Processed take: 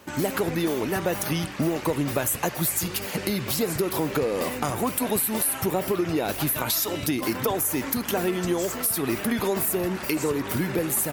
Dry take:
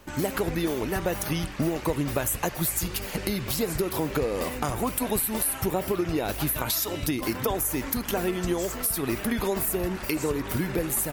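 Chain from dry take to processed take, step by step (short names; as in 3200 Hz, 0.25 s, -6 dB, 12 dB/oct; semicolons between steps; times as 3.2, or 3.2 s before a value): HPF 110 Hz 12 dB/oct; in parallel at -7.5 dB: hard clip -27 dBFS, distortion -9 dB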